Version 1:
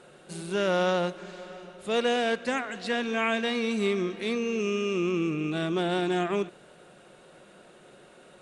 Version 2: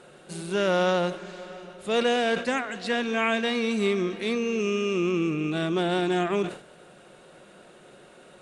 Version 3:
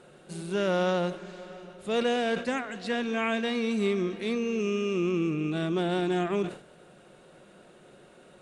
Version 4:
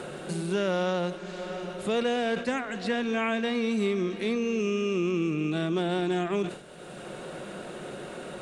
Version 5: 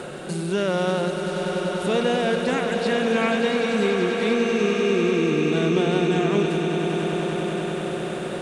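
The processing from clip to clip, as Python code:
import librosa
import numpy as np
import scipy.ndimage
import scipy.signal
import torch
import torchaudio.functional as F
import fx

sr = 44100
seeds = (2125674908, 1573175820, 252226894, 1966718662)

y1 = fx.sustainer(x, sr, db_per_s=130.0)
y1 = y1 * librosa.db_to_amplitude(2.0)
y2 = fx.low_shelf(y1, sr, hz=400.0, db=5.0)
y2 = y2 * librosa.db_to_amplitude(-5.0)
y3 = fx.band_squash(y2, sr, depth_pct=70)
y4 = fx.echo_swell(y3, sr, ms=97, loudest=8, wet_db=-11)
y4 = y4 * librosa.db_to_amplitude(4.0)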